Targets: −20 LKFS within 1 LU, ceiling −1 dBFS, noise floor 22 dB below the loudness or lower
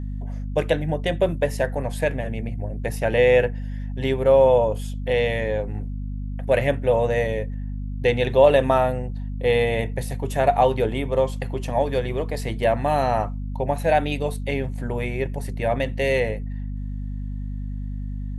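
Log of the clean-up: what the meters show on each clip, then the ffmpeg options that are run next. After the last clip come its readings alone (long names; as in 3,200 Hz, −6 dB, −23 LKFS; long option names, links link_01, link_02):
mains hum 50 Hz; hum harmonics up to 250 Hz; level of the hum −27 dBFS; integrated loudness −23.0 LKFS; sample peak −4.0 dBFS; target loudness −20.0 LKFS
→ -af "bandreject=frequency=50:width_type=h:width=6,bandreject=frequency=100:width_type=h:width=6,bandreject=frequency=150:width_type=h:width=6,bandreject=frequency=200:width_type=h:width=6,bandreject=frequency=250:width_type=h:width=6"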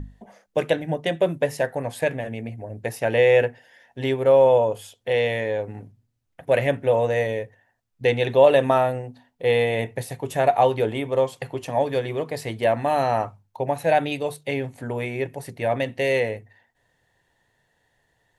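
mains hum none found; integrated loudness −23.0 LKFS; sample peak −4.5 dBFS; target loudness −20.0 LKFS
→ -af "volume=3dB"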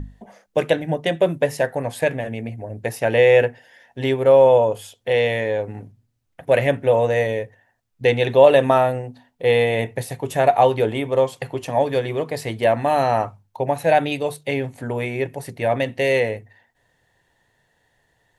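integrated loudness −20.0 LKFS; sample peak −1.5 dBFS; background noise floor −68 dBFS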